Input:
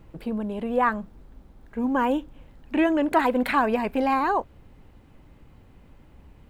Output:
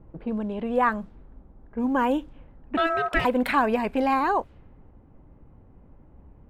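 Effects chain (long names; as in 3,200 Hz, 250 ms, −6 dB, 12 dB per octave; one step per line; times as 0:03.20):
0:02.77–0:03.25: ring modulation 990 Hz
low-pass that shuts in the quiet parts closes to 870 Hz, open at −22 dBFS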